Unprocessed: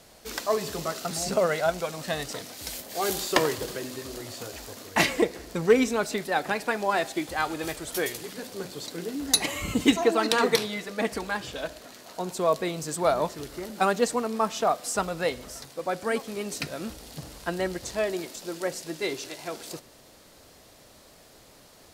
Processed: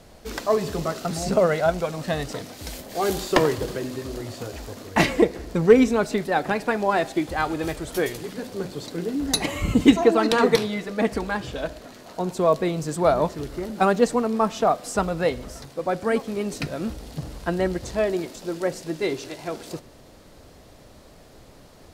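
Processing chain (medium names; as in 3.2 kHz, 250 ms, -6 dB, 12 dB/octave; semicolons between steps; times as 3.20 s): tilt EQ -2 dB/octave; trim +3 dB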